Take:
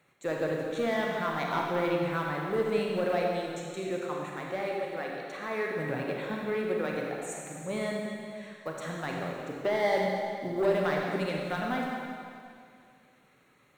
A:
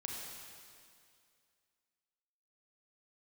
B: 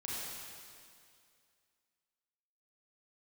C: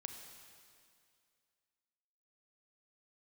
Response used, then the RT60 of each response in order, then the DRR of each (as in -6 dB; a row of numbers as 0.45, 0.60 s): A; 2.3, 2.3, 2.3 s; -1.5, -7.0, 4.5 dB